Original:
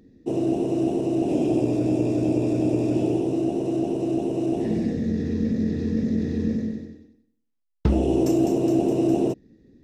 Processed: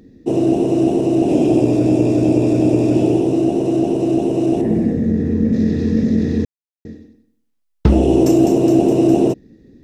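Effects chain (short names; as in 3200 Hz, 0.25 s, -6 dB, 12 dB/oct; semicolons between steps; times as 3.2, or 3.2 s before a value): 4.61–5.53 bell 4500 Hz -13 dB 1.8 oct; 6.45–6.85 mute; gain +8 dB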